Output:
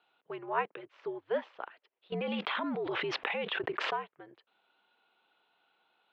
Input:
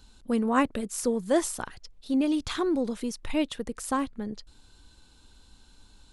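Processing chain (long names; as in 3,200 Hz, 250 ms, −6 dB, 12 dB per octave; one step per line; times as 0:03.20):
single-sideband voice off tune −84 Hz 510–3,100 Hz
0:02.12–0:03.93: envelope flattener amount 100%
level −5 dB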